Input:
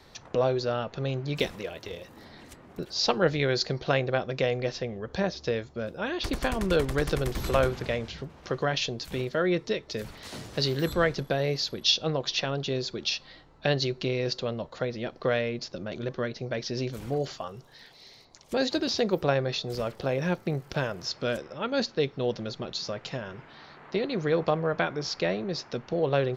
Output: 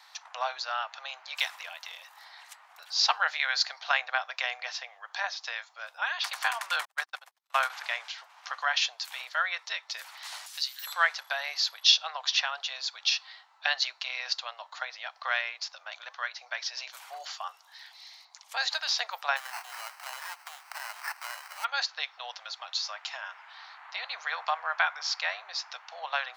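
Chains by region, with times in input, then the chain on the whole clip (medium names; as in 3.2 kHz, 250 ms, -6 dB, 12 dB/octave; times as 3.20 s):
6.85–7.70 s: gate -25 dBFS, range -56 dB + hum notches 50/100/150/200/250/300/350/400 Hz
10.46–10.87 s: differentiator + three bands compressed up and down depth 40%
19.36–21.63 s: formants flattened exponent 0.6 + compression 3:1, threshold -35 dBFS + sample-rate reducer 3.5 kHz
whole clip: steep high-pass 770 Hz 48 dB/octave; dynamic bell 1.6 kHz, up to +3 dB, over -42 dBFS, Q 1.7; trim +2.5 dB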